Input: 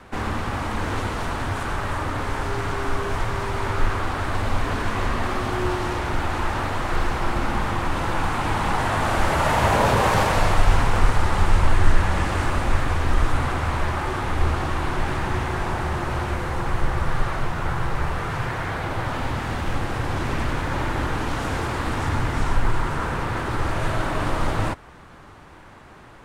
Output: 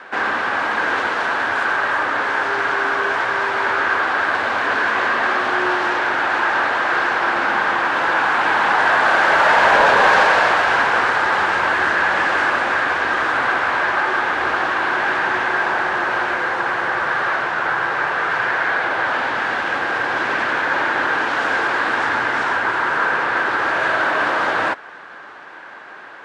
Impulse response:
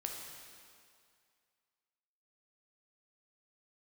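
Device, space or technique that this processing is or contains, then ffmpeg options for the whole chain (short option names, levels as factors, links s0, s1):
intercom: -af "highpass=470,lowpass=4300,equalizer=f=1600:t=o:w=0.27:g=10,asoftclip=type=tanh:threshold=0.237,volume=2.51"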